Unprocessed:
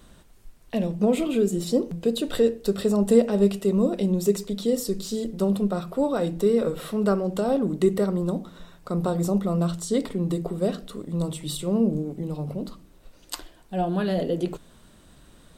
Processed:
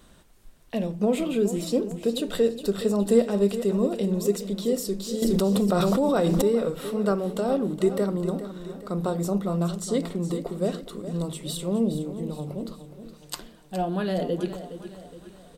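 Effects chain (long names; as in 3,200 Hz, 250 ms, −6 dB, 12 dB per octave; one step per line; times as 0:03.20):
low-shelf EQ 190 Hz −3.5 dB
repeating echo 416 ms, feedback 47%, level −12 dB
0:05.22–0:06.42: envelope flattener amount 100%
level −1 dB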